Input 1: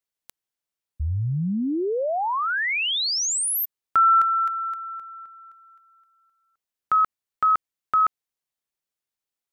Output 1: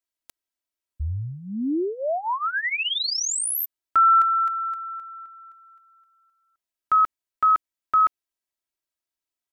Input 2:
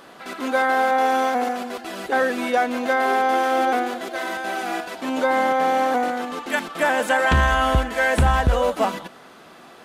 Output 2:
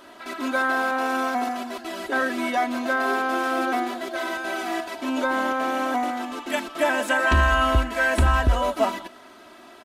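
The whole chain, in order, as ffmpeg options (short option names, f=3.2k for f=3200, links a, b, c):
-af "aecho=1:1:3.1:0.76,volume=-3.5dB"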